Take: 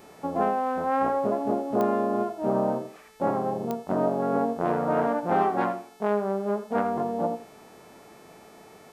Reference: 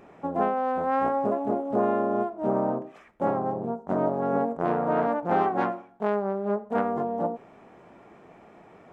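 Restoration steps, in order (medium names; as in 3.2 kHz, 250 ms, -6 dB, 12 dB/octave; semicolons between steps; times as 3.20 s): de-click; de-hum 435.6 Hz, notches 32; inverse comb 82 ms -12 dB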